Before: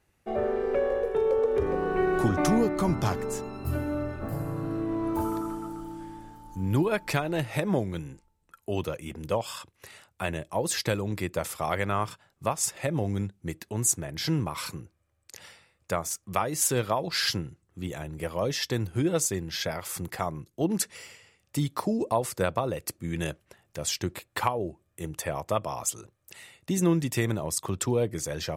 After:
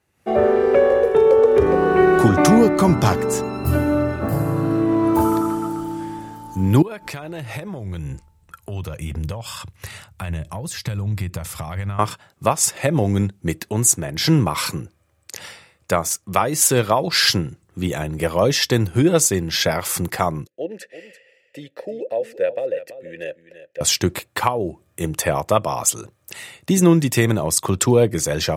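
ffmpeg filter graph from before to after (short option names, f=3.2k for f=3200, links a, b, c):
-filter_complex "[0:a]asettb=1/sr,asplit=3[a][b][c];[a]atrim=end=6.824[d];[b]atrim=start=6.82:end=11.99,asetpts=PTS-STARTPTS,afade=t=in:d=0.004:c=qsin,afade=t=out:st=5.166:d=0.004:c=qsin,acompressor=threshold=-40dB:ratio=6:attack=3.2:release=140:knee=1:detection=peak,asubboost=boost=11.5:cutoff=110[e];[c]atrim=start=11.986[f];[d][e]acrossfade=d=0.004:c1=hsin:c2=qsin[g];[g][f]acrossfade=d=0.004:c1=qsin:c2=hsin,asettb=1/sr,asplit=3[h][i][j];[h]atrim=end=20.474[k];[i]atrim=start=20.47:end=23.81,asetpts=PTS-STARTPTS,afade=t=in:d=0.004:c=qsin,afade=t=out:st=3.336:d=0.004:c=qsin,asplit=3[l][m][n];[l]bandpass=f=530:t=q:w=8,volume=0dB[o];[m]bandpass=f=1.84k:t=q:w=8,volume=-6dB[p];[n]bandpass=f=2.48k:t=q:w=8,volume=-9dB[q];[o][p][q]amix=inputs=3:normalize=0,equalizer=f=14k:t=o:w=0.43:g=9.5,aecho=1:1:337:0.211,atrim=end_sample=147294[r];[j]atrim=start=23.806[s];[k][r]acrossfade=d=0.004:c1=hsin:c2=qsin[t];[t][s]acrossfade=d=0.004:c1=qsin:c2=hsin,highpass=73,dynaudnorm=f=140:g=3:m=12dB"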